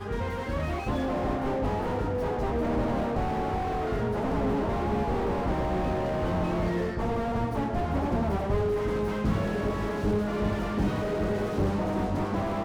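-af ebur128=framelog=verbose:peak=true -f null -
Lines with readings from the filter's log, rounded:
Integrated loudness:
  I:         -28.7 LUFS
  Threshold: -38.7 LUFS
Loudness range:
  LRA:         0.7 LU
  Threshold: -48.6 LUFS
  LRA low:   -29.0 LUFS
  LRA high:  -28.3 LUFS
True peak:
  Peak:      -13.5 dBFS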